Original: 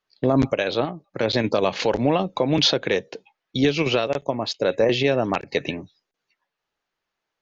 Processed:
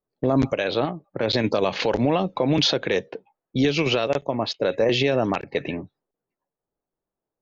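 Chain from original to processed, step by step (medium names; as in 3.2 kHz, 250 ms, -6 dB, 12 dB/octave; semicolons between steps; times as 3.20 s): peak limiter -13 dBFS, peak gain reduction 5.5 dB; level-controlled noise filter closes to 540 Hz, open at -18.5 dBFS; trim +2 dB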